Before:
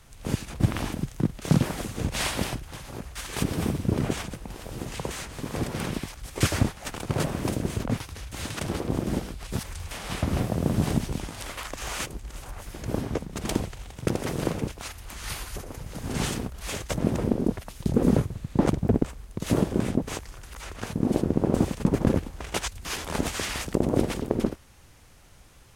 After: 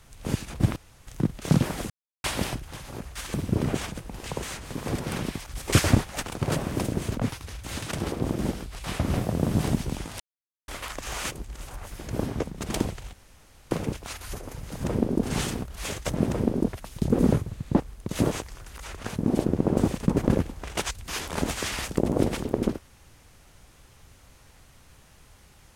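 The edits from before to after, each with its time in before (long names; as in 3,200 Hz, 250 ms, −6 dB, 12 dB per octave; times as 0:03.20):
0:00.76–0:01.07: fill with room tone
0:01.90–0:02.24: silence
0:03.34–0:03.70: remove
0:04.60–0:04.92: remove
0:06.16–0:06.91: clip gain +3.5 dB
0:09.52–0:10.07: remove
0:11.43: splice in silence 0.48 s
0:13.88–0:14.46: fill with room tone
0:14.96–0:15.44: remove
0:17.13–0:17.52: duplicate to 0:16.07
0:18.64–0:19.11: remove
0:19.62–0:20.08: remove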